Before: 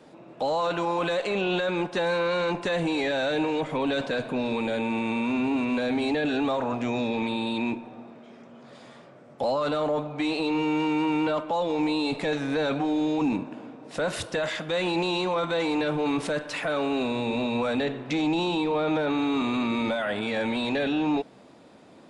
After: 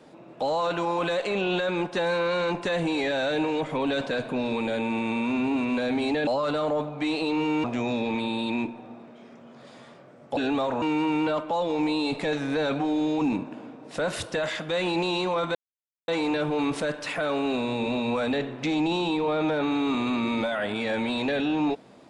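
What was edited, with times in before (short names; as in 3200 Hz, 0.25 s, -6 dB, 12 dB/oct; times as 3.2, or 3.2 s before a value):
6.27–6.72 swap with 9.45–10.82
15.55 insert silence 0.53 s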